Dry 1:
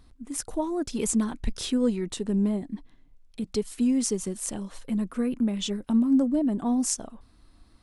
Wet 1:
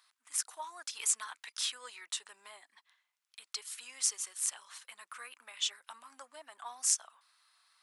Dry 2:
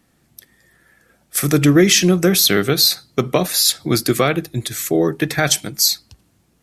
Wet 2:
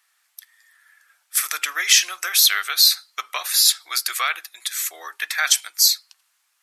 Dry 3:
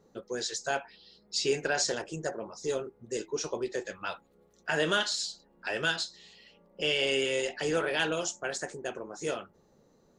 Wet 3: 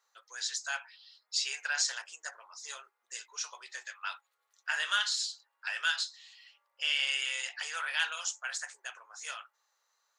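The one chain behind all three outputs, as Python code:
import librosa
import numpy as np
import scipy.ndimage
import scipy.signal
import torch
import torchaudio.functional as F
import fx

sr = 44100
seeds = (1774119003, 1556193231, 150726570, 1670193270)

y = scipy.signal.sosfilt(scipy.signal.butter(4, 1100.0, 'highpass', fs=sr, output='sos'), x)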